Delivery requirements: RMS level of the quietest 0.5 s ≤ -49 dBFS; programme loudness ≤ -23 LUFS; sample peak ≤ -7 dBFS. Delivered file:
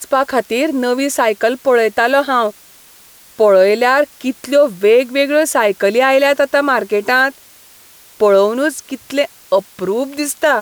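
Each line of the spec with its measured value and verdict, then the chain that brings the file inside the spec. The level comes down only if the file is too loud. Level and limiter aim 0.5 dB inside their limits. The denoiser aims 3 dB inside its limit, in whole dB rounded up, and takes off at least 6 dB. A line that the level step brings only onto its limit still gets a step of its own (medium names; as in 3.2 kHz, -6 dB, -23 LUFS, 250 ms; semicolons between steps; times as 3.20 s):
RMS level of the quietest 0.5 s -44 dBFS: fail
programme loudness -14.0 LUFS: fail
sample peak -2.5 dBFS: fail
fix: trim -9.5 dB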